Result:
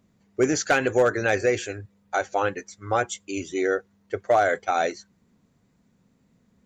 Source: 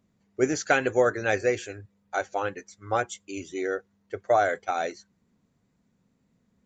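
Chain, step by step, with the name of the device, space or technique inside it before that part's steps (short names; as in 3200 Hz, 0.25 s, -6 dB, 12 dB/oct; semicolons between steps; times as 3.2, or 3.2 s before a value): clipper into limiter (hard clip -14 dBFS, distortion -22 dB; limiter -17.5 dBFS, peak gain reduction 3.5 dB); gain +5.5 dB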